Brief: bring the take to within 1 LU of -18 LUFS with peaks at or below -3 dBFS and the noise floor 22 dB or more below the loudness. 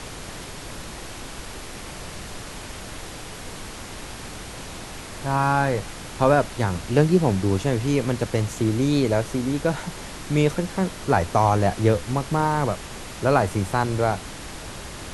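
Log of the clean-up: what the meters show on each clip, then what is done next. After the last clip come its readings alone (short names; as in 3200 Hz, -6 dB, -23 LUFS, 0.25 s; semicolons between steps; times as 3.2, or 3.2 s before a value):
noise floor -37 dBFS; noise floor target -45 dBFS; loudness -22.5 LUFS; peak -4.0 dBFS; loudness target -18.0 LUFS
-> noise print and reduce 8 dB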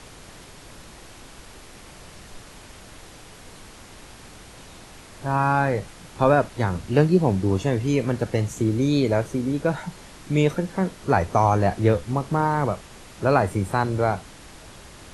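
noise floor -45 dBFS; loudness -23.0 LUFS; peak -4.0 dBFS; loudness target -18.0 LUFS
-> gain +5 dB; limiter -3 dBFS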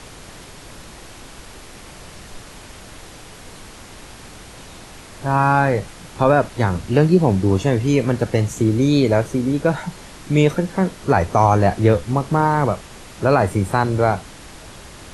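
loudness -18.0 LUFS; peak -3.0 dBFS; noise floor -40 dBFS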